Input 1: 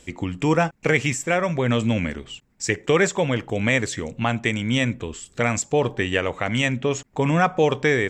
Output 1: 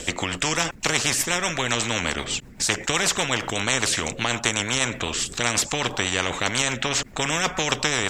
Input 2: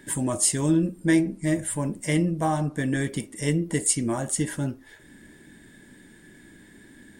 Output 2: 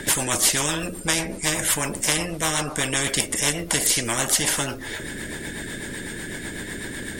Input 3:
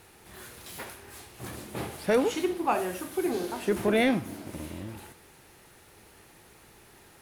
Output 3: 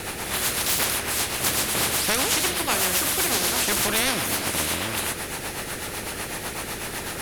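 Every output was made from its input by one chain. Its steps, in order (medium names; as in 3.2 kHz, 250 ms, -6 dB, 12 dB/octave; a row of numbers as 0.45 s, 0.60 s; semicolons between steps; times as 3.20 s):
rotary cabinet horn 8 Hz; spectrum-flattening compressor 4:1; normalise loudness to -23 LUFS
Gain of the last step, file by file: +4.0 dB, +6.5 dB, +7.0 dB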